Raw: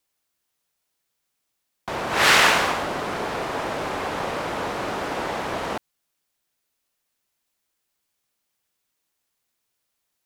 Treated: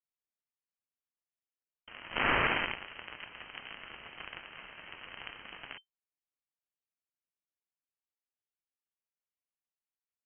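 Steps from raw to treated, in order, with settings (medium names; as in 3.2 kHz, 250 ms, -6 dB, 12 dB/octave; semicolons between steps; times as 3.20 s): Chebyshev shaper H 2 -6 dB, 3 -31 dB, 7 -17 dB, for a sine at -3 dBFS; frequency inversion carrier 3.1 kHz; peak limiter -16 dBFS, peak gain reduction 13 dB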